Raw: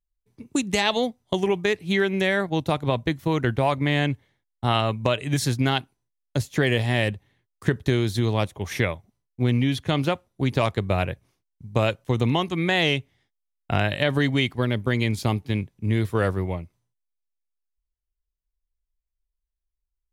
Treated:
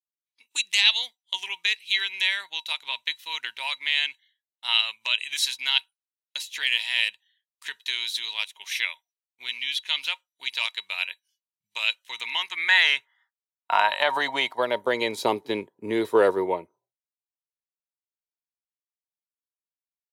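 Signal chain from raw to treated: high-pass sweep 2.7 kHz -> 410 Hz, 11.92–15.39 s; spectral noise reduction 21 dB; small resonant body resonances 940/3900 Hz, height 17 dB, ringing for 90 ms

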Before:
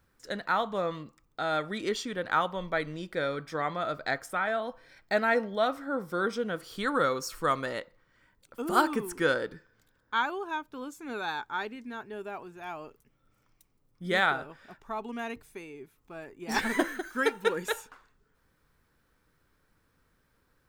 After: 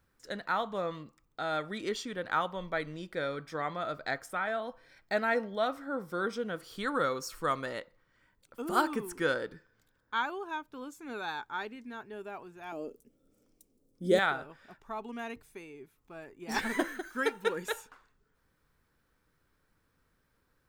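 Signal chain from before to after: 12.72–14.19 s: ten-band graphic EQ 125 Hz -5 dB, 250 Hz +11 dB, 500 Hz +11 dB, 1 kHz -9 dB, 2 kHz -7 dB, 8 kHz +6 dB, 16 kHz +4 dB; trim -3.5 dB

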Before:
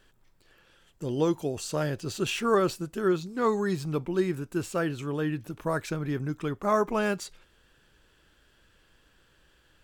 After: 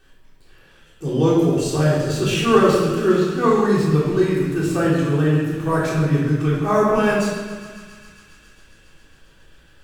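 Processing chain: on a send: thinning echo 136 ms, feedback 85%, high-pass 720 Hz, level -14 dB; on the sum: simulated room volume 840 m³, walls mixed, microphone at 3.6 m; trim +1 dB

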